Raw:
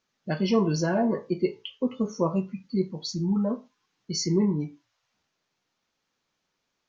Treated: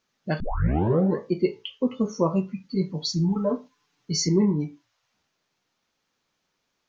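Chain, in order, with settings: 0.40 s: tape start 0.79 s; 2.69–4.29 s: comb 6.9 ms, depth 76%; trim +2.5 dB

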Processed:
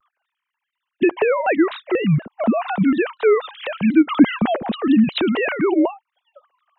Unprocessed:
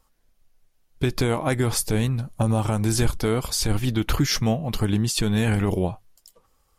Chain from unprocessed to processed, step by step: formants replaced by sine waves; vibrato with a chosen wave saw down 4.1 Hz, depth 250 cents; trim +4.5 dB

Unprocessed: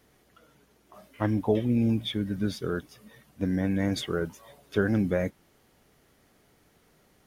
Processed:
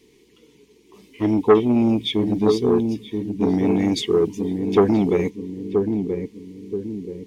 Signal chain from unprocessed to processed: FFT filter 120 Hz 0 dB, 440 Hz +14 dB, 630 Hz -21 dB, 970 Hz +2 dB, 1.4 kHz -17 dB, 2.2 kHz +8 dB, 7.7 kHz +6 dB, 11 kHz -2 dB; filtered feedback delay 979 ms, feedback 45%, low-pass 820 Hz, level -5 dB; transformer saturation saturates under 640 Hz; trim +1 dB

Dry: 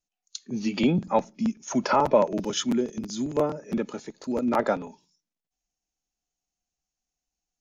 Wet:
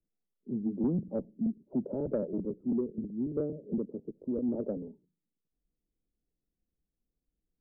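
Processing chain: steep low-pass 500 Hz 36 dB/octave; saturation -14.5 dBFS, distortion -23 dB; three bands compressed up and down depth 40%; trim -4.5 dB

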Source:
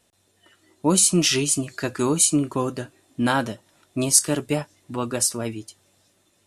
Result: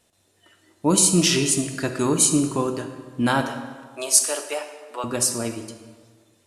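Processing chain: 3.41–5.04 s: high-pass 480 Hz 24 dB/octave; reverberation RT60 1.5 s, pre-delay 27 ms, DRR 7 dB

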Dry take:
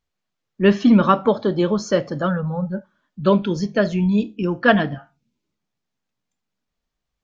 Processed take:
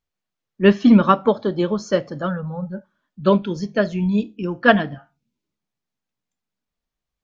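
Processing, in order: upward expansion 1.5:1, over -22 dBFS; trim +2 dB

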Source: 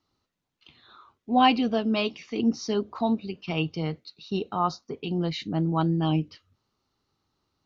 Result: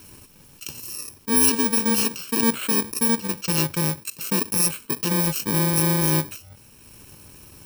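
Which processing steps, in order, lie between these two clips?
bit-reversed sample order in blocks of 64 samples; transient shaper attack +2 dB, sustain -8 dB; level flattener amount 50%

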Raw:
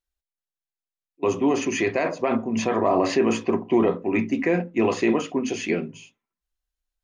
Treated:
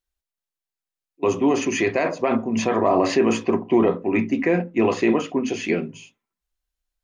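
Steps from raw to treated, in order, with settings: 3.58–5.65 s: treble shelf 6.2 kHz -6.5 dB; trim +2 dB

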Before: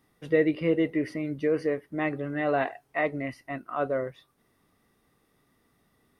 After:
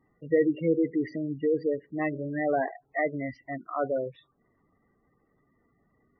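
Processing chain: level-controlled noise filter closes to 2.9 kHz, open at -21 dBFS; spectral gate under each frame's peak -15 dB strong; 1.79–2.34 s: de-hum 53.8 Hz, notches 13

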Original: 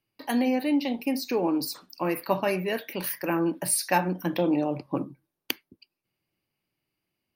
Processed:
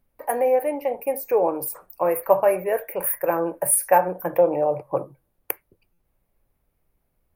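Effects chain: FFT filter 140 Hz 0 dB, 250 Hz -15 dB, 500 Hz +12 dB, 2.4 kHz -3 dB, 3.8 kHz -29 dB, 10 kHz +8 dB; added noise brown -69 dBFS; buffer glitch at 5.93 s, samples 256, times 8

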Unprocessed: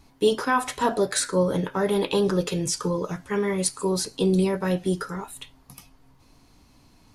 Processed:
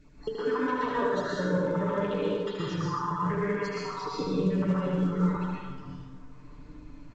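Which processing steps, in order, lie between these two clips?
random holes in the spectrogram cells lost 39%; low-pass 2 kHz 12 dB/octave; peaking EQ 760 Hz -11.5 dB 0.31 oct; comb 6.8 ms, depth 60%; compression 6:1, threshold -31 dBFS, peak gain reduction 14.5 dB; delay 76 ms -5.5 dB; plate-style reverb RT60 1.5 s, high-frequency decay 0.55×, pre-delay 105 ms, DRR -7 dB; trim -1.5 dB; A-law 128 kbps 16 kHz

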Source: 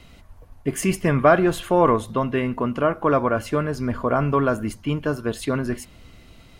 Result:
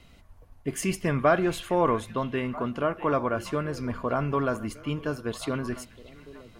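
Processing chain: on a send: repeats whose band climbs or falls 645 ms, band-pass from 2.5 kHz, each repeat -1.4 oct, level -11.5 dB; on the sum: dynamic bell 4.7 kHz, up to +4 dB, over -44 dBFS, Q 0.74; trim -6.5 dB

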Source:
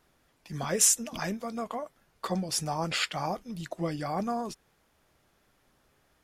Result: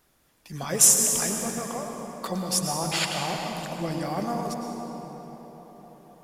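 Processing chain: treble shelf 6.9 kHz +10 dB; feedback echo behind a band-pass 255 ms, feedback 77%, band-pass 500 Hz, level -13 dB; on a send at -2 dB: reverberation RT60 3.7 s, pre-delay 96 ms

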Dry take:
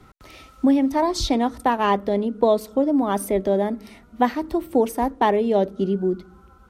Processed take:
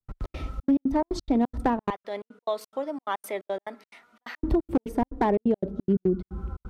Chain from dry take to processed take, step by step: 1.90–4.43 s: high-pass 1.4 kHz 12 dB/octave; tilt EQ -3.5 dB/octave; compression 3:1, threshold -28 dBFS, peak gain reduction 16 dB; hard clipper -19.5 dBFS, distortion -23 dB; trance gate ".xx.xxx.x.xx.x" 176 bpm -60 dB; trim +5 dB

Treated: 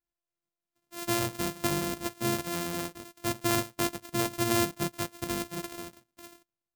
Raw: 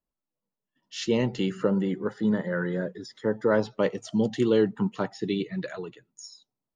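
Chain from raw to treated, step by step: sorted samples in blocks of 128 samples; treble shelf 5.7 kHz +10 dB; trim -6 dB

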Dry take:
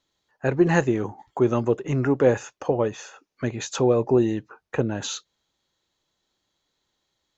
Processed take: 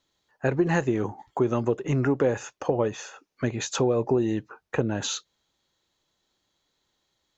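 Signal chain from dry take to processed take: compression 5:1, threshold -20 dBFS, peak gain reduction 7.5 dB; trim +1 dB

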